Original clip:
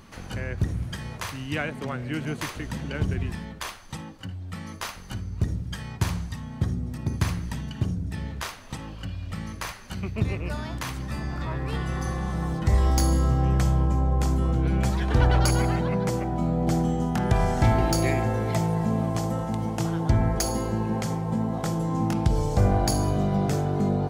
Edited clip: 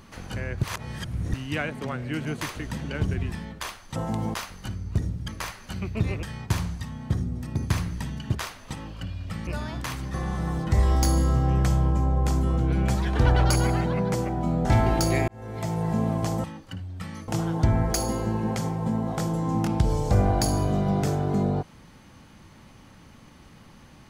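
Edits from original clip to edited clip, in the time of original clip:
0.63–1.34 reverse
3.96–4.8 swap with 19.36–19.74
7.86–8.37 cut
9.49–10.44 move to 5.74
11.11–12.09 cut
16.6–17.57 cut
18.2–18.86 fade in

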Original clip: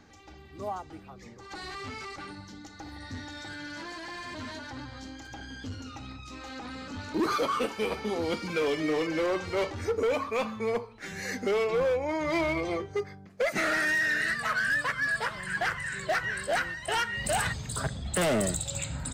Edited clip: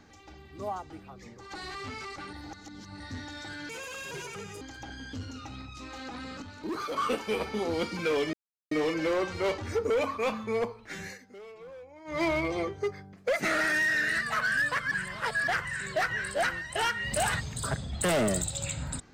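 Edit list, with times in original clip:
2.33–3 reverse
3.69–5.12 speed 155%
6.93–7.47 gain -7 dB
8.84 insert silence 0.38 s
11.14–12.34 dip -20 dB, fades 0.17 s
15.04–15.6 reverse

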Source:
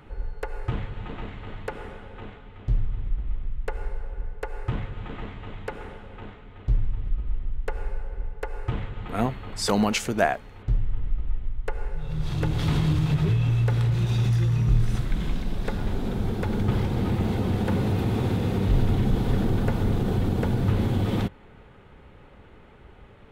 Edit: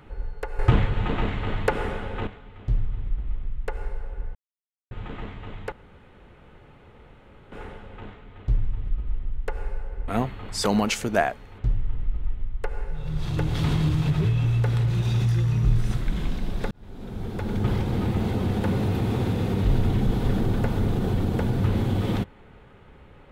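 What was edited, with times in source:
0.59–2.27 gain +10 dB
4.35–4.91 mute
5.72 insert room tone 1.80 s
8.28–9.12 cut
15.75–16.72 fade in

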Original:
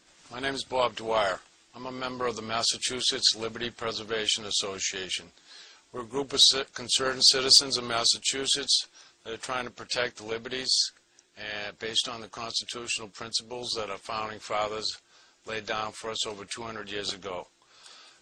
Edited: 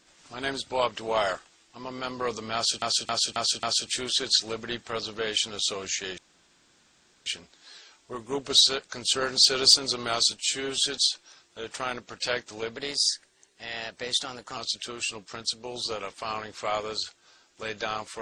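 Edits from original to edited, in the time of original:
2.55–2.82 loop, 5 plays
5.1 insert room tone 1.08 s
8.21–8.51 stretch 1.5×
10.46–12.44 speed 110%

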